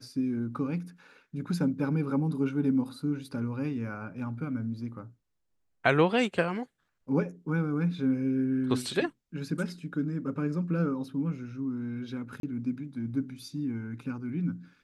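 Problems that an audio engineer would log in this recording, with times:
12.4–12.43 gap 32 ms

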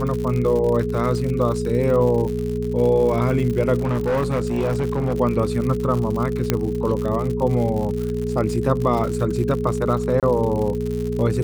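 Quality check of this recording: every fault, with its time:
crackle 110/s -26 dBFS
hum 60 Hz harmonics 4 -26 dBFS
tone 420 Hz -25 dBFS
3.79–5.17 clipped -17 dBFS
6.5 pop -4 dBFS
10.2–10.23 gap 27 ms

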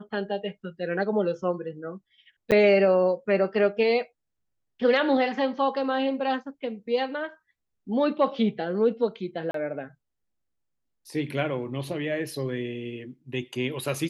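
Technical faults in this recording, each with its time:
2.51–2.52 gap 8.3 ms
9.51–9.54 gap 33 ms

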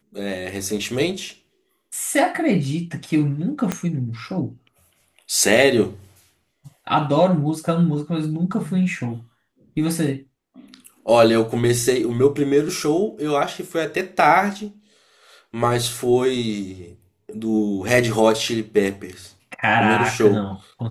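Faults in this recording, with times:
3.72 pop -8 dBFS

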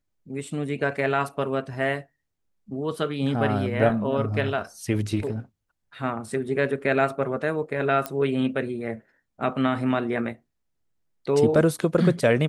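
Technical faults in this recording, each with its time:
8.06 pop -12 dBFS

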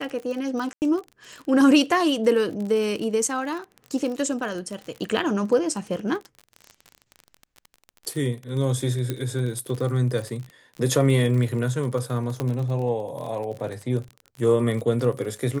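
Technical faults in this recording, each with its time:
crackle 40/s -30 dBFS
0.73–0.82 gap 89 ms
9.1 pop -13 dBFS
12.4 pop -14 dBFS

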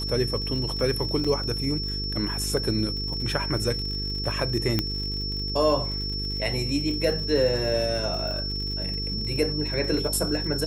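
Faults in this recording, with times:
buzz 50 Hz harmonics 9 -32 dBFS
crackle 79/s -33 dBFS
tone 5400 Hz -30 dBFS
1.24–1.25 gap 5.2 ms
4.79 pop -9 dBFS

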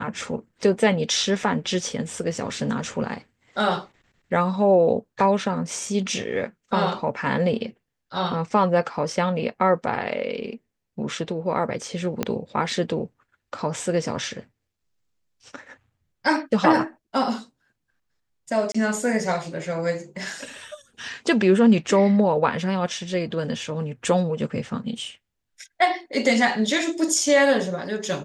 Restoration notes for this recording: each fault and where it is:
12.23 pop -9 dBFS
18.72–18.75 gap 25 ms

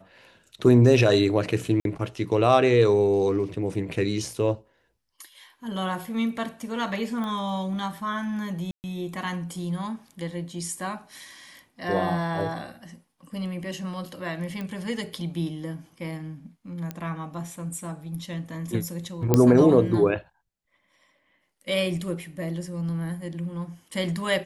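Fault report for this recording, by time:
1.8–1.85 gap 52 ms
7.24 pop -21 dBFS
8.71–8.84 gap 0.129 s
14.61 pop -21 dBFS
16.91 pop -18 dBFS
19.34 pop -5 dBFS

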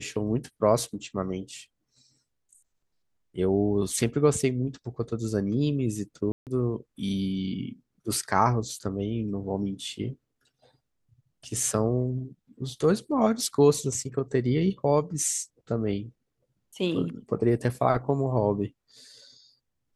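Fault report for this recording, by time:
6.32–6.47 gap 0.148 s

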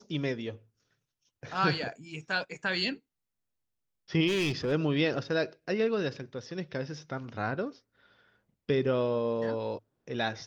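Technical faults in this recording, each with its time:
4.27–4.73 clipped -25 dBFS

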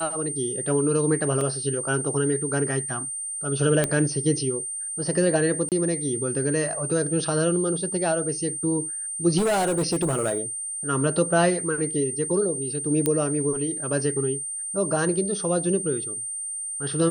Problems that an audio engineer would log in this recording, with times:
tone 8800 Hz -29 dBFS
1.41 gap 2.4 ms
3.84 pop -7 dBFS
5.69–5.72 gap 28 ms
9.37–10.41 clipped -19.5 dBFS
13.06 pop -8 dBFS

